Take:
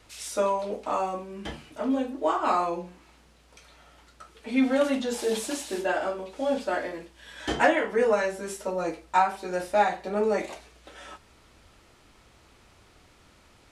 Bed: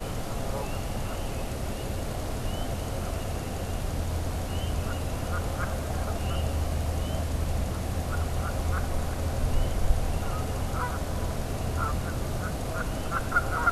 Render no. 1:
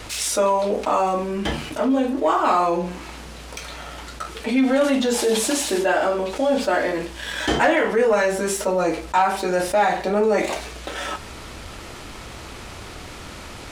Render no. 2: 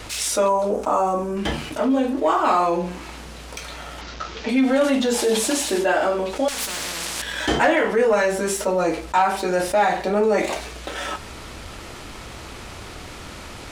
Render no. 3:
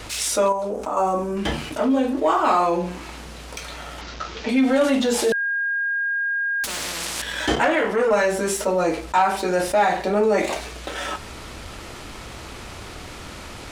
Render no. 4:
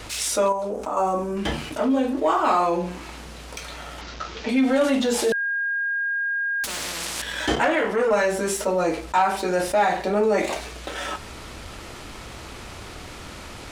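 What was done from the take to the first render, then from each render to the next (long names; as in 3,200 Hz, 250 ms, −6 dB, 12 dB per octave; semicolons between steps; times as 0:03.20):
leveller curve on the samples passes 1; envelope flattener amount 50%
0:00.48–0:01.37: flat-topped bell 2,900 Hz −9.5 dB; 0:04.01–0:04.49: linear delta modulator 32 kbit/s, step −30.5 dBFS; 0:06.48–0:07.22: every bin compressed towards the loudest bin 10 to 1
0:00.52–0:00.97: downward compressor 2 to 1, threshold −26 dBFS; 0:05.32–0:06.64: beep over 1,620 Hz −20.5 dBFS; 0:07.55–0:08.11: saturating transformer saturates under 830 Hz
level −1.5 dB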